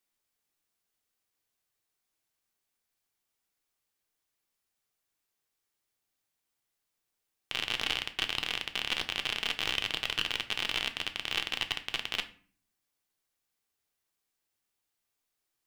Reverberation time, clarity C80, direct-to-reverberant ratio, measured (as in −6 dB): 0.45 s, 19.0 dB, 6.5 dB